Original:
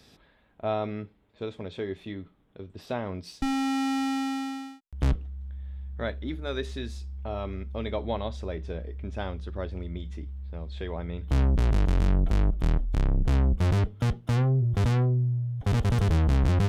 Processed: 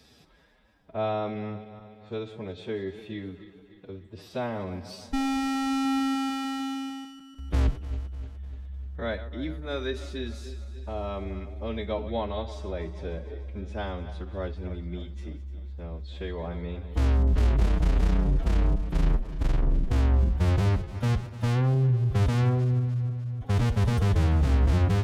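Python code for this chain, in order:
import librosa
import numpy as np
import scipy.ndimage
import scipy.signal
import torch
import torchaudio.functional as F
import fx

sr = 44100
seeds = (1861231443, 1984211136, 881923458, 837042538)

y = fx.reverse_delay_fb(x, sr, ms=100, feedback_pct=72, wet_db=-13.5)
y = fx.stretch_vocoder(y, sr, factor=1.5)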